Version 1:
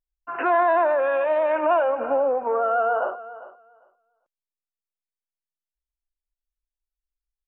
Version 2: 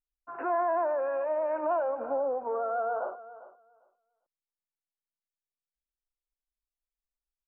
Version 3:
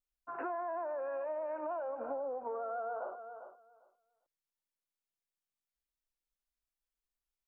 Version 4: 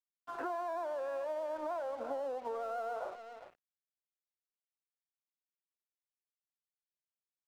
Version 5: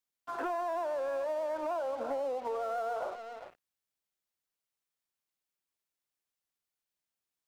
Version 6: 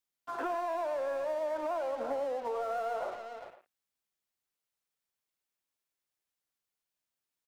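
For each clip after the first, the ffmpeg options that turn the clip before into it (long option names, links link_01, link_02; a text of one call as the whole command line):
ffmpeg -i in.wav -af "firequalizer=gain_entry='entry(840,0);entry(2300,-11);entry(3800,-26)':delay=0.05:min_phase=1,volume=-8dB" out.wav
ffmpeg -i in.wav -af "acompressor=threshold=-35dB:ratio=6,volume=-1dB" out.wav
ffmpeg -i in.wav -af "aeval=exprs='sgn(val(0))*max(abs(val(0))-0.0015,0)':channel_layout=same,volume=1dB" out.wav
ffmpeg -i in.wav -af "asoftclip=type=tanh:threshold=-32.5dB,volume=5.5dB" out.wav
ffmpeg -i in.wav -filter_complex "[0:a]asplit=2[link_01][link_02];[link_02]adelay=110,highpass=300,lowpass=3400,asoftclip=type=hard:threshold=-36.5dB,volume=-9dB[link_03];[link_01][link_03]amix=inputs=2:normalize=0" out.wav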